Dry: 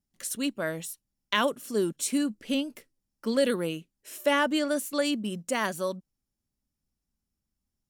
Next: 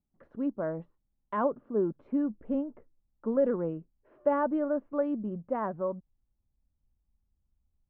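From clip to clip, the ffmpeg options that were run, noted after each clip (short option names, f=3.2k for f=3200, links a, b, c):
-af "asubboost=boost=4:cutoff=99,lowpass=f=1.1k:w=0.5412,lowpass=f=1.1k:w=1.3066"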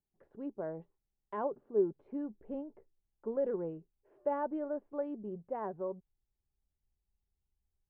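-af "equalizer=f=250:t=o:w=0.33:g=-6,equalizer=f=400:t=o:w=0.33:g=10,equalizer=f=800:t=o:w=0.33:g=6,equalizer=f=1.25k:t=o:w=0.33:g=-6,volume=-8.5dB"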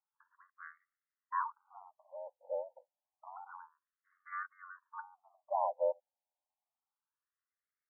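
-af "aeval=exprs='val(0)*sin(2*PI*45*n/s)':c=same,afftfilt=real='re*between(b*sr/1024,680*pow(1600/680,0.5+0.5*sin(2*PI*0.29*pts/sr))/1.41,680*pow(1600/680,0.5+0.5*sin(2*PI*0.29*pts/sr))*1.41)':imag='im*between(b*sr/1024,680*pow(1600/680,0.5+0.5*sin(2*PI*0.29*pts/sr))/1.41,680*pow(1600/680,0.5+0.5*sin(2*PI*0.29*pts/sr))*1.41)':win_size=1024:overlap=0.75,volume=11dB"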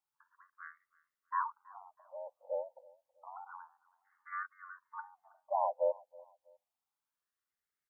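-af "aecho=1:1:324|648:0.0668|0.0227,volume=1dB"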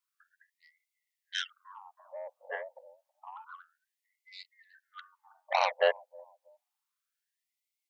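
-af "aeval=exprs='0.106*(cos(1*acos(clip(val(0)/0.106,-1,1)))-cos(1*PI/2))+0.00422*(cos(4*acos(clip(val(0)/0.106,-1,1)))-cos(4*PI/2))+0.0299*(cos(7*acos(clip(val(0)/0.106,-1,1)))-cos(7*PI/2))':c=same,afftfilt=real='re*gte(b*sr/1024,400*pow(2000/400,0.5+0.5*sin(2*PI*0.29*pts/sr)))':imag='im*gte(b*sr/1024,400*pow(2000/400,0.5+0.5*sin(2*PI*0.29*pts/sr)))':win_size=1024:overlap=0.75,volume=4.5dB"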